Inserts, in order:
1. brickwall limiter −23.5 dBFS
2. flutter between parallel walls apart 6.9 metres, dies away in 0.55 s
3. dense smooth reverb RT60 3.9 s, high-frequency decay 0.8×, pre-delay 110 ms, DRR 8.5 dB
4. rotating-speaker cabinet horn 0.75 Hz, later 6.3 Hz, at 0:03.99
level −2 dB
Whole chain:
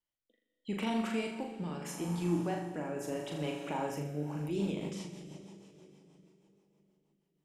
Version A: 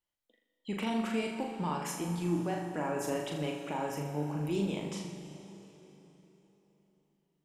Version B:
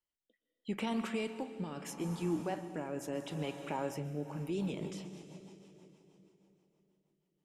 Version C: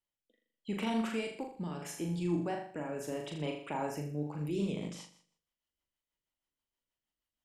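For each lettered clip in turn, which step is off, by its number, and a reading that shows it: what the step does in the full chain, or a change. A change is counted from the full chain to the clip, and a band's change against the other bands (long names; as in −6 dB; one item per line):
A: 4, 8 kHz band +2.0 dB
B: 2, change in momentary loudness spread −2 LU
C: 3, change in momentary loudness spread −7 LU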